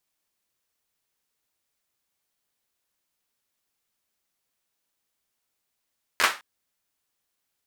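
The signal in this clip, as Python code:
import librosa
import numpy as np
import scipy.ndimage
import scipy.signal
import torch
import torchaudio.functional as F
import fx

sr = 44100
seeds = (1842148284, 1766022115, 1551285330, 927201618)

y = fx.drum_clap(sr, seeds[0], length_s=0.21, bursts=4, spacing_ms=12, hz=1400.0, decay_s=0.28)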